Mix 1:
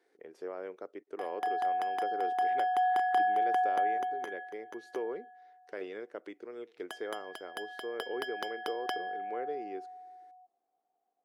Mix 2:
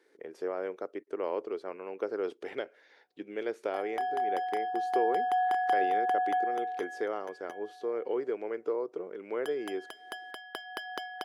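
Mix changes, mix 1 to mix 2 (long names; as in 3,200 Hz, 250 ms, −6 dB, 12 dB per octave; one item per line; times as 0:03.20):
speech +6.0 dB
background: entry +2.55 s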